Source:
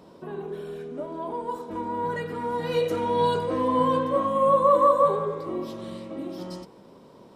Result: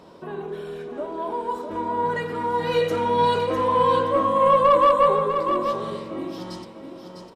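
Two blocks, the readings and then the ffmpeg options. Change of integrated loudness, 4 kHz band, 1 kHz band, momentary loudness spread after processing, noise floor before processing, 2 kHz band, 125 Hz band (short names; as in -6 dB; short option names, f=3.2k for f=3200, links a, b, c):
+3.5 dB, +5.5 dB, +4.5 dB, 19 LU, -51 dBFS, +7.0 dB, +2.0 dB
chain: -filter_complex "[0:a]lowshelf=f=150:g=10,bandreject=f=64.25:t=h:w=4,bandreject=f=128.5:t=h:w=4,bandreject=f=192.75:t=h:w=4,bandreject=f=257:t=h:w=4,asplit=2[a][b];[b]highpass=f=720:p=1,volume=10dB,asoftclip=type=tanh:threshold=-7.5dB[c];[a][c]amix=inputs=2:normalize=0,lowpass=f=5.6k:p=1,volume=-6dB,asplit=2[d][e];[e]aecho=0:1:652:0.422[f];[d][f]amix=inputs=2:normalize=0"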